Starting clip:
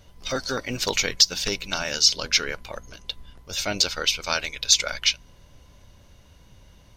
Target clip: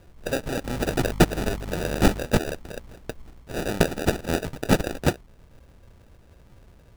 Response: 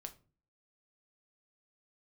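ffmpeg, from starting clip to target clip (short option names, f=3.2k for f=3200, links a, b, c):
-filter_complex "[0:a]asettb=1/sr,asplit=3[a][b][c];[a]atrim=end=0.644[d];[b]atrim=start=0.64:end=2.2,asetpts=PTS-STARTPTS,afade=t=in:d=0.004:c=qsin,afade=t=out:st=1.556:d=0.004:c=qsin,aeval=exprs='val(0)+0.0224*(sin(2*PI*50*n/s)+sin(2*PI*2*50*n/s)/2+sin(2*PI*3*50*n/s)/3+sin(2*PI*4*50*n/s)/4+sin(2*PI*5*50*n/s)/5)':c=same[e];[c]atrim=start=2.196[f];[d][e]acrossfade=d=0.004:c1=hsin:c2=qsin[g];[g][f]acrossfade=d=0.004:c1=qsin:c2=hsin,acrusher=samples=41:mix=1:aa=0.000001"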